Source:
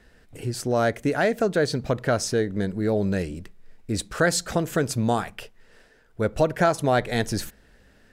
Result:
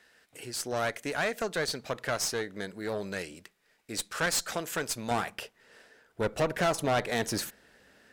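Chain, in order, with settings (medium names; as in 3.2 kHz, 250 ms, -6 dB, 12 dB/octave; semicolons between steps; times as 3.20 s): high-pass 1.3 kHz 6 dB/octave, from 5.11 s 370 Hz; one-sided clip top -30.5 dBFS; valve stage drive 22 dB, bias 0.3; trim +1.5 dB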